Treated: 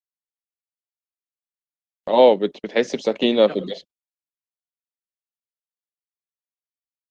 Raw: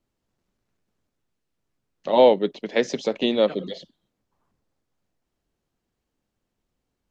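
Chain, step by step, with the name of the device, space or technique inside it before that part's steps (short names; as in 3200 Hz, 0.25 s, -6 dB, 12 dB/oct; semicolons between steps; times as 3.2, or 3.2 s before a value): video call (HPF 150 Hz 12 dB/oct; AGC gain up to 5.5 dB; gate -33 dBFS, range -47 dB; Opus 24 kbps 48000 Hz)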